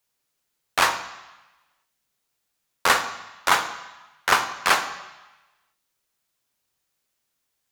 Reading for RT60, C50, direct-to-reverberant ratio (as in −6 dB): 1.1 s, 10.5 dB, 8.0 dB